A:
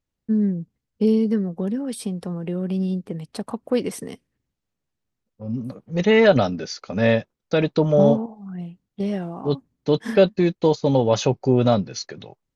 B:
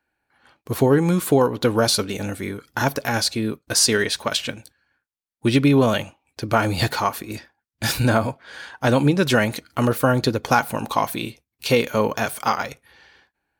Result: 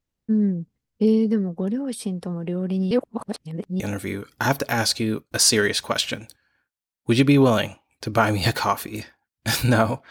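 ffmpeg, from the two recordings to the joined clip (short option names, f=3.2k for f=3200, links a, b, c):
-filter_complex "[0:a]apad=whole_dur=10.1,atrim=end=10.1,asplit=2[a][b];[a]atrim=end=2.912[c];[b]atrim=start=2.908:end=3.802,asetpts=PTS-STARTPTS,areverse[d];[1:a]atrim=start=2.158:end=8.46[e];[c][d]acrossfade=d=0.004:c1=hsin:c2=hsin[f];[f][e]acrossfade=d=0.004:c1=hsin:c2=hsin"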